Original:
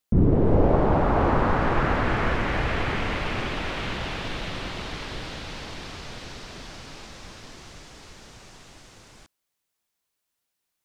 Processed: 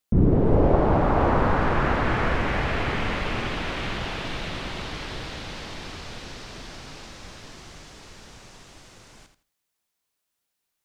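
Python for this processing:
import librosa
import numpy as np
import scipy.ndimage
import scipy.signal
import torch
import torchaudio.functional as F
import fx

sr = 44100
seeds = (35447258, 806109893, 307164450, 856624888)

y = fx.echo_feedback(x, sr, ms=83, feedback_pct=22, wet_db=-9.5)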